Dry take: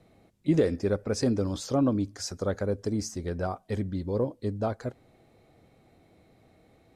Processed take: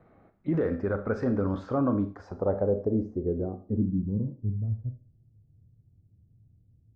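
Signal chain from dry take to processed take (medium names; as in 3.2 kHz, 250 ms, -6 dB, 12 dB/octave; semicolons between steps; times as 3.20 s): peak limiter -19.5 dBFS, peak gain reduction 6 dB; low-pass sweep 1.4 kHz -> 110 Hz, 1.86–4.76 s; Schroeder reverb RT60 0.37 s, combs from 28 ms, DRR 8 dB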